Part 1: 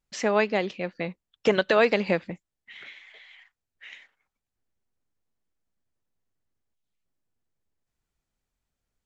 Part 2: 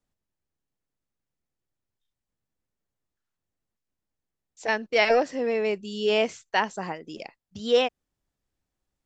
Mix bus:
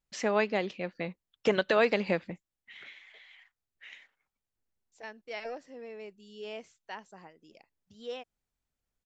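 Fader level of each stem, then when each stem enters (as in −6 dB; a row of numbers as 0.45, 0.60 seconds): −4.5, −18.5 decibels; 0.00, 0.35 seconds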